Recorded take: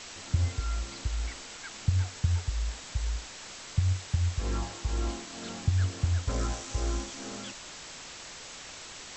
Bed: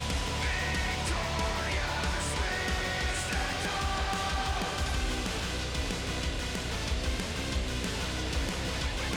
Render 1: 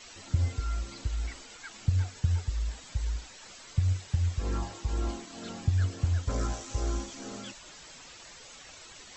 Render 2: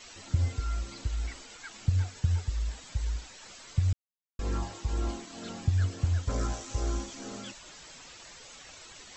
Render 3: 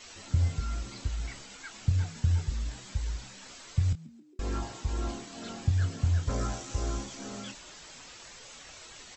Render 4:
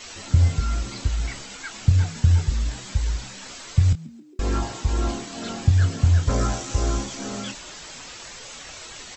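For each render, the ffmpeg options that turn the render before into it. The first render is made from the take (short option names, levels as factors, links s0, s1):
-af "afftdn=nr=10:nf=-45"
-filter_complex "[0:a]asplit=3[s0][s1][s2];[s0]atrim=end=3.93,asetpts=PTS-STARTPTS,afade=t=out:st=3.926:d=0.004:c=hsin[s3];[s1]atrim=start=3.93:end=4.39,asetpts=PTS-STARTPTS,volume=0[s4];[s2]atrim=start=4.39,asetpts=PTS-STARTPTS,afade=t=in:d=0.004:c=hsin[s5];[s3][s4][s5]concat=n=3:v=0:a=1"
-filter_complex "[0:a]asplit=2[s0][s1];[s1]adelay=25,volume=0.355[s2];[s0][s2]amix=inputs=2:normalize=0,asplit=5[s3][s4][s5][s6][s7];[s4]adelay=136,afreqshift=70,volume=0.0794[s8];[s5]adelay=272,afreqshift=140,volume=0.0412[s9];[s6]adelay=408,afreqshift=210,volume=0.0214[s10];[s7]adelay=544,afreqshift=280,volume=0.0112[s11];[s3][s8][s9][s10][s11]amix=inputs=5:normalize=0"
-af "volume=2.82"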